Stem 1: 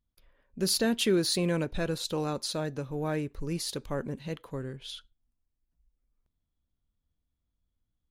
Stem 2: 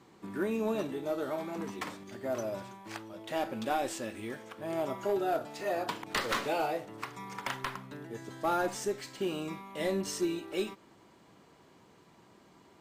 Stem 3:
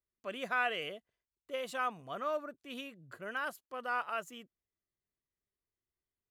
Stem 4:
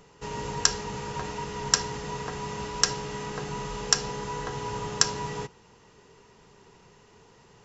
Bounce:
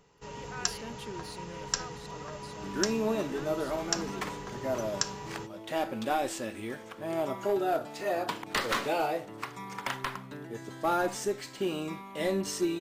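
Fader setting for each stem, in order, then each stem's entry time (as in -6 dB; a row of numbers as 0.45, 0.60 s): -18.0, +2.0, -12.0, -8.5 dB; 0.00, 2.40, 0.00, 0.00 s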